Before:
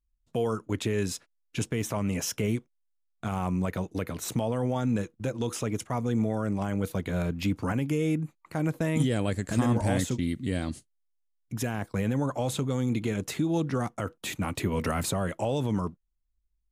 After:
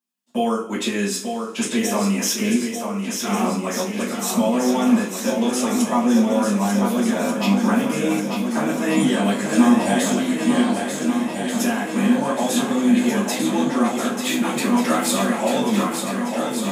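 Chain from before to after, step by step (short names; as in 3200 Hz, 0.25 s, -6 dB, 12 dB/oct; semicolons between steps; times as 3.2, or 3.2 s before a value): Chebyshev high-pass 200 Hz, order 4; bell 350 Hz -2.5 dB 1.6 oct; on a send: swung echo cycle 1.486 s, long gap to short 1.5:1, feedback 60%, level -6 dB; on the sum: two-slope reverb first 0.31 s, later 1.7 s, from -21 dB, DRR -8 dB; gain +2 dB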